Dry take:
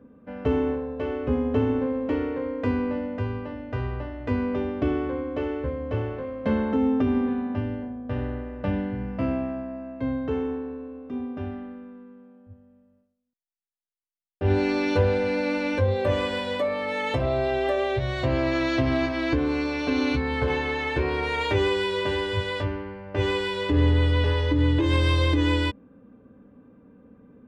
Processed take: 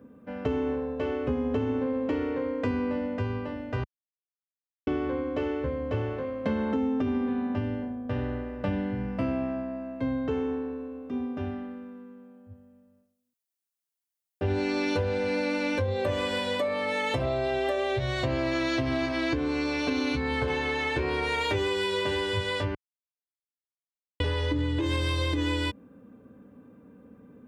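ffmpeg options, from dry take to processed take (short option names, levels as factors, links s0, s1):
-filter_complex "[0:a]asplit=5[s0][s1][s2][s3][s4];[s0]atrim=end=3.84,asetpts=PTS-STARTPTS,afade=t=out:st=3.836:d=0.004:c=hsin[s5];[s1]atrim=start=3.84:end=4.87,asetpts=PTS-STARTPTS,volume=0[s6];[s2]atrim=start=4.87:end=22.75,asetpts=PTS-STARTPTS,afade=t=in:d=0.004:c=hsin,afade=t=out:st=17.876:d=0.004:c=hsin[s7];[s3]atrim=start=22.75:end=24.2,asetpts=PTS-STARTPTS,volume=0[s8];[s4]atrim=start=24.2,asetpts=PTS-STARTPTS,afade=t=in:d=0.004:c=hsin[s9];[s5][s6][s7][s8][s9]concat=n=5:v=0:a=1,highpass=66,highshelf=f=5700:g=10,acompressor=threshold=0.0631:ratio=6"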